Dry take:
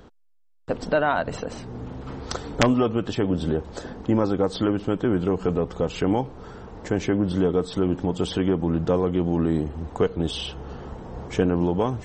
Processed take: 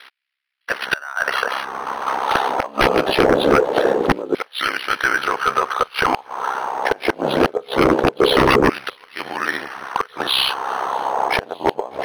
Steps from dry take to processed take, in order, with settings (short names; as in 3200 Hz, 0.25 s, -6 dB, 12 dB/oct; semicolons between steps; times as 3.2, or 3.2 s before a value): steep low-pass 4800 Hz 72 dB/oct; flipped gate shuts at -11 dBFS, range -29 dB; LFO high-pass saw down 0.23 Hz 380–2300 Hz; sine folder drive 20 dB, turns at -4.5 dBFS; ring modulator 33 Hz; on a send: thin delay 0.608 s, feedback 71%, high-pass 2600 Hz, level -24 dB; on the sum: decimation joined by straight lines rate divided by 6×; gain -1.5 dB